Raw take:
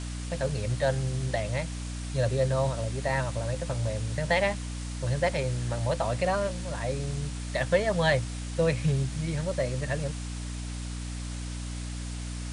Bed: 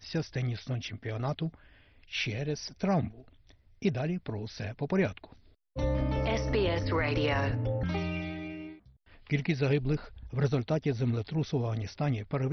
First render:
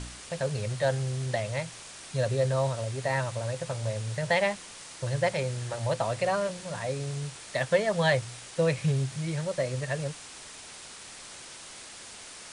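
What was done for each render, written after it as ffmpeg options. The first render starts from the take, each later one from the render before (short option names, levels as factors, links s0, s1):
-af "bandreject=f=60:t=h:w=4,bandreject=f=120:t=h:w=4,bandreject=f=180:t=h:w=4,bandreject=f=240:t=h:w=4,bandreject=f=300:t=h:w=4"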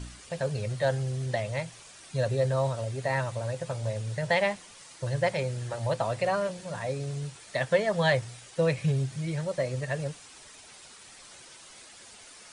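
-af "afftdn=nr=8:nf=-46"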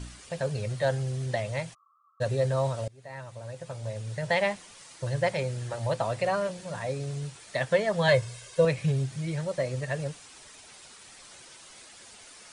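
-filter_complex "[0:a]asplit=3[s0][s1][s2];[s0]afade=t=out:st=1.73:d=0.02[s3];[s1]asuperpass=centerf=1200:order=20:qfactor=4.5,afade=t=in:st=1.73:d=0.02,afade=t=out:st=2.2:d=0.02[s4];[s2]afade=t=in:st=2.2:d=0.02[s5];[s3][s4][s5]amix=inputs=3:normalize=0,asettb=1/sr,asplit=3[s6][s7][s8];[s6]atrim=end=8.084[s9];[s7]atrim=start=8.08:end=8.65,asetpts=PTS-STARTPTS,afade=t=in:d=0.004:c=qsin,afade=t=out:st=0.566:d=0.004:c=qsin,aecho=1:1:1.9:0.82,atrim=end_sample=25137[s10];[s8]atrim=start=8.646[s11];[s9][s10]acrossfade=d=0.004:c1=hsin:c2=qsin[s12];[s12][s11]acrossfade=d=0.004:c1=qsin:c2=hsin,asplit=2[s13][s14];[s13]atrim=end=2.88,asetpts=PTS-STARTPTS,afade=t=out:st=2.876:d=0.004:c=hsin:silence=0.0630957[s15];[s14]atrim=start=2.88,asetpts=PTS-STARTPTS,afade=t=in:d=1.59:silence=0.0630957[s16];[s15][s16]concat=n=2:v=0:a=1"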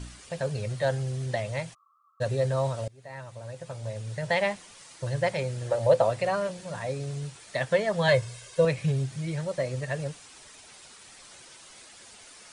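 -filter_complex "[0:a]asettb=1/sr,asplit=3[s0][s1][s2];[s0]atrim=end=5.614[s3];[s1]atrim=start=5.61:end=6.1,asetpts=PTS-STARTPTS,afade=t=in:d=0.004:c=qsin,afade=t=out:st=0.486:d=0.004:c=qsin,equalizer=f=530:t=o:w=0.64:g=12.5[s4];[s2]atrim=start=6.096[s5];[s3][s4]acrossfade=d=0.004:c1=hsin:c2=qsin[s6];[s6][s5]acrossfade=d=0.004:c1=qsin:c2=hsin"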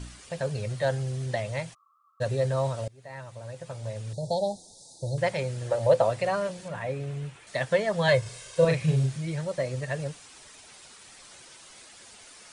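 -filter_complex "[0:a]asettb=1/sr,asplit=3[s0][s1][s2];[s0]atrim=end=4.134[s3];[s1]atrim=start=4.13:end=5.18,asetpts=PTS-STARTPTS,afade=t=in:d=0.004:c=qsin,afade=t=out:st=1.046:d=0.004:c=qsin,asuperstop=centerf=1800:order=20:qfactor=0.65[s4];[s2]atrim=start=5.176[s5];[s3][s4]acrossfade=d=0.004:c1=hsin:c2=qsin[s6];[s6][s5]acrossfade=d=0.004:c1=qsin:c2=hsin,asettb=1/sr,asplit=3[s7][s8][s9];[s7]atrim=end=6.684[s10];[s8]atrim=start=6.68:end=7.47,asetpts=PTS-STARTPTS,afade=t=in:d=0.004:c=qsin,afade=t=out:st=0.786:d=0.004:c=qsin,highshelf=f=3500:t=q:w=1.5:g=-7.5[s11];[s9]atrim=start=7.466[s12];[s10][s11]acrossfade=d=0.004:c1=hsin:c2=qsin[s13];[s13][s12]acrossfade=d=0.004:c1=qsin:c2=hsin,asettb=1/sr,asplit=3[s14][s15][s16];[s14]atrim=end=8.224[s17];[s15]atrim=start=8.22:end=9.18,asetpts=PTS-STARTPTS,afade=t=in:d=0.004:c=qsin,afade=t=out:st=0.956:d=0.004:c=qsin,asplit=2[s18][s19];[s19]adelay=38,volume=0.794[s20];[s18][s20]amix=inputs=2:normalize=0,atrim=end_sample=42336[s21];[s16]atrim=start=9.176[s22];[s17][s21]acrossfade=d=0.004:c1=hsin:c2=qsin[s23];[s23][s22]acrossfade=d=0.004:c1=qsin:c2=hsin"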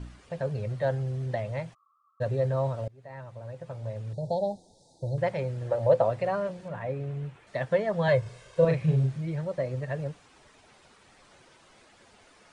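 -af "lowpass=f=1200:p=1"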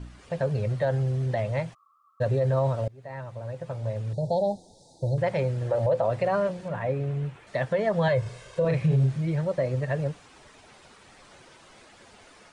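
-af "alimiter=limit=0.0891:level=0:latency=1:release=55,dynaudnorm=f=120:g=3:m=1.78"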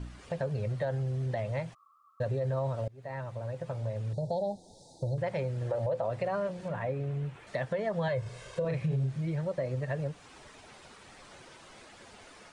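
-af "acompressor=threshold=0.02:ratio=2"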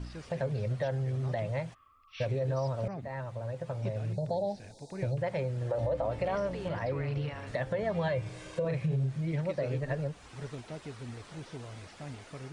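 -filter_complex "[1:a]volume=0.211[s0];[0:a][s0]amix=inputs=2:normalize=0"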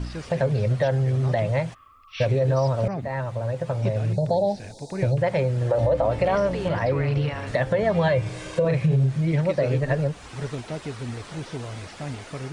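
-af "volume=3.16"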